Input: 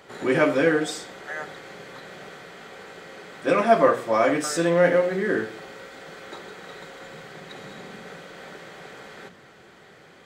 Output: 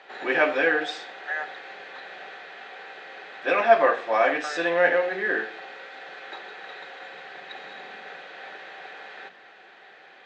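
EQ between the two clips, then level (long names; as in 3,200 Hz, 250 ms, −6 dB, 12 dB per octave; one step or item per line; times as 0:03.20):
high-frequency loss of the air 94 metres
loudspeaker in its box 390–7,100 Hz, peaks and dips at 770 Hz +9 dB, 1,700 Hz +9 dB, 2,600 Hz +9 dB, 3,800 Hz +7 dB
−3.0 dB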